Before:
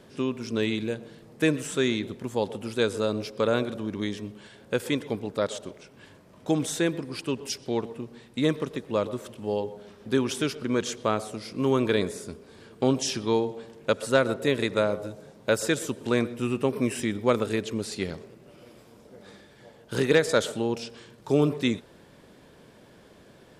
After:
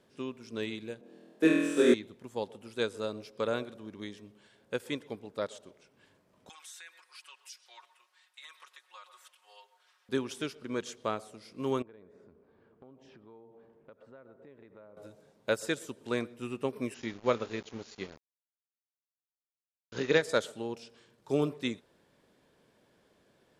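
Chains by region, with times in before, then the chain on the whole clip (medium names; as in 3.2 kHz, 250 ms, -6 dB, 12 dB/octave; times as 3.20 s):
1.01–1.94 s: high-pass 240 Hz 24 dB/octave + tilt shelf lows +7 dB, about 770 Hz + flutter echo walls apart 4.2 m, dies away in 1.4 s
6.49–10.09 s: high-pass 1 kHz 24 dB/octave + comb 5.5 ms, depth 97% + compression 3:1, threshold -34 dBFS
11.82–14.97 s: low-pass 1.4 kHz + compression 4:1, threshold -39 dBFS
16.94–20.22 s: doubling 26 ms -13 dB + small samples zeroed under -34 dBFS + brick-wall FIR low-pass 7.2 kHz
whole clip: bass shelf 230 Hz -5 dB; upward expansion 1.5:1, over -36 dBFS; trim -2.5 dB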